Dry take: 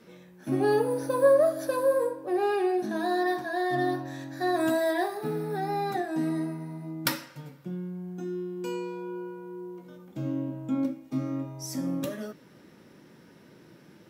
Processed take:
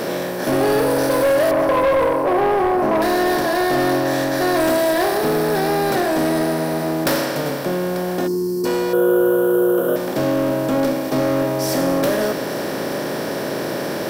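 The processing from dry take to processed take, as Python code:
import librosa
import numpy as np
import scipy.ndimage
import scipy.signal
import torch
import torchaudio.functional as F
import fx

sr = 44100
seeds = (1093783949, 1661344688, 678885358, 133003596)

y = fx.bin_compress(x, sr, power=0.4)
y = fx.high_shelf_res(y, sr, hz=1600.0, db=-13.0, q=3.0, at=(1.51, 3.02))
y = y + 10.0 ** (-20.0 / 20.0) * np.pad(y, (int(891 * sr / 1000.0), 0))[:len(y)]
y = fx.spec_box(y, sr, start_s=8.27, length_s=0.38, low_hz=460.0, high_hz=4100.0, gain_db=-21)
y = 10.0 ** (-19.5 / 20.0) * np.tanh(y / 10.0 ** (-19.5 / 20.0))
y = fx.curve_eq(y, sr, hz=(300.0, 430.0, 900.0, 1400.0, 2100.0, 3100.0, 4500.0, 12000.0), db=(0, 11, -6, 8, -21, 0, -21, 8), at=(8.93, 9.96))
y = F.gain(torch.from_numpy(y), 7.0).numpy()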